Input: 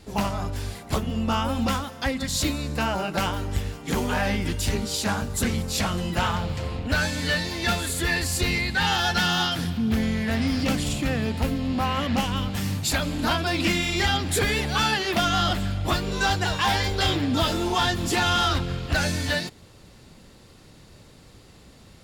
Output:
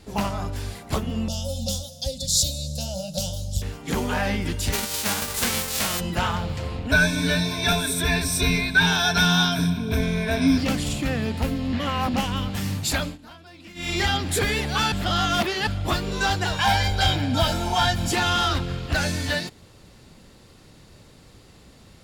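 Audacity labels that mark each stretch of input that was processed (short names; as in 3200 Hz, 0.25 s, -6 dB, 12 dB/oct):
1.280000	3.620000	EQ curve 180 Hz 0 dB, 390 Hz -30 dB, 550 Hz +2 dB, 1100 Hz -29 dB, 2100 Hz -28 dB, 3500 Hz +3 dB, 5900 Hz +9 dB, 13000 Hz +4 dB
4.720000	5.990000	spectral whitening exponent 0.3
6.910000	10.580000	ripple EQ crests per octave 1.6, crest to trough 17 dB
11.730000	12.140000	reverse
13.020000	13.910000	dip -21.5 dB, fades 0.16 s
14.920000	15.670000	reverse
16.570000	18.130000	comb 1.3 ms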